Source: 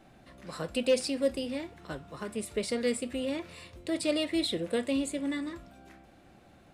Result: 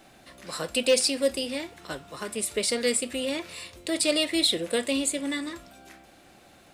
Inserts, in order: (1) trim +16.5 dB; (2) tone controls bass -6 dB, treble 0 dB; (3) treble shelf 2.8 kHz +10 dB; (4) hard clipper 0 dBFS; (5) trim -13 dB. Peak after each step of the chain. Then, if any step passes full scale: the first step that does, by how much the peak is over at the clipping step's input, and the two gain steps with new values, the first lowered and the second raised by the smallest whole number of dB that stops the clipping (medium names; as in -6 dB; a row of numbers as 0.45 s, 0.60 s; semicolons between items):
-0.5 dBFS, -0.5 dBFS, +3.0 dBFS, 0.0 dBFS, -13.0 dBFS; step 3, 3.0 dB; step 1 +13.5 dB, step 5 -10 dB